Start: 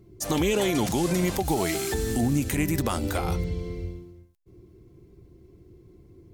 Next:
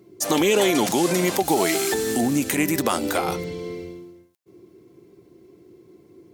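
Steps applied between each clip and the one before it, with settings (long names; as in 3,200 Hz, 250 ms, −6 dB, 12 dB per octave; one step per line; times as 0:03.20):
high-pass filter 260 Hz 12 dB per octave
level +6.5 dB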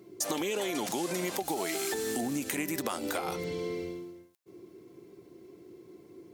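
low-shelf EQ 180 Hz −6.5 dB
downward compressor 6 to 1, threshold −30 dBFS, peak gain reduction 13.5 dB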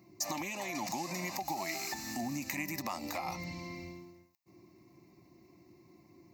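phaser with its sweep stopped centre 2,200 Hz, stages 8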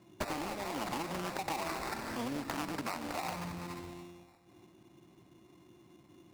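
delay that swaps between a low-pass and a high-pass 148 ms, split 1,500 Hz, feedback 68%, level −11.5 dB
decimation without filtering 14×
highs frequency-modulated by the lows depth 0.77 ms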